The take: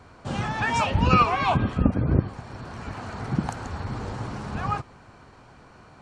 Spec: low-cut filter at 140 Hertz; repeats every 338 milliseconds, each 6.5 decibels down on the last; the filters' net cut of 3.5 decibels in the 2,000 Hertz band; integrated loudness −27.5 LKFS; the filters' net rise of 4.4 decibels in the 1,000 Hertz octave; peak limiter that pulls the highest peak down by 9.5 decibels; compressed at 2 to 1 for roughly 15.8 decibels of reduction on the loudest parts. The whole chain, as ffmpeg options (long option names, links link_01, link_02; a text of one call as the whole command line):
ffmpeg -i in.wav -af "highpass=140,equalizer=frequency=1000:width_type=o:gain=7.5,equalizer=frequency=2000:width_type=o:gain=-7,acompressor=threshold=-42dB:ratio=2,alimiter=level_in=4dB:limit=-24dB:level=0:latency=1,volume=-4dB,aecho=1:1:338|676|1014|1352|1690|2028:0.473|0.222|0.105|0.0491|0.0231|0.0109,volume=11dB" out.wav